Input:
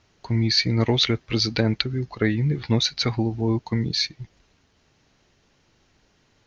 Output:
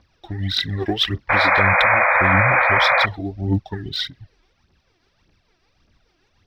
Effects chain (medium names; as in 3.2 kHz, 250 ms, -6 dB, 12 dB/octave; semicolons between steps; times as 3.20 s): rotating-head pitch shifter -2.5 st; phaser 1.7 Hz, delay 3.2 ms, feedback 66%; painted sound noise, 1.29–3.06 s, 490–2500 Hz -14 dBFS; trim -2 dB